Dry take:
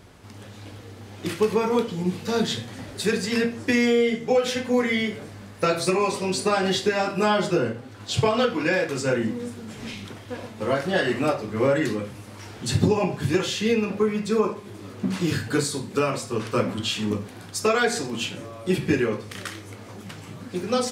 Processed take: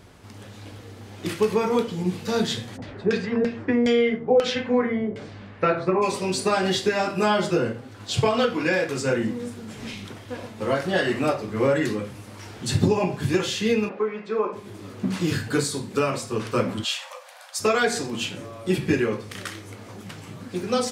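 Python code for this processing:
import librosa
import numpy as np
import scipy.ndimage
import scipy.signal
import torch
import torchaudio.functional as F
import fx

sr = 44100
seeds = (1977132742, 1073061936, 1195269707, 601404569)

y = fx.filter_lfo_lowpass(x, sr, shape='saw_down', hz=fx.line((2.76, 3.9), (6.01, 0.67)), low_hz=550.0, high_hz=6400.0, q=1.2, at=(2.76, 6.01), fade=0.02)
y = fx.bandpass_edges(y, sr, low_hz=390.0, high_hz=2200.0, at=(13.88, 14.52), fade=0.02)
y = fx.brickwall_highpass(y, sr, low_hz=500.0, at=(16.83, 17.59), fade=0.02)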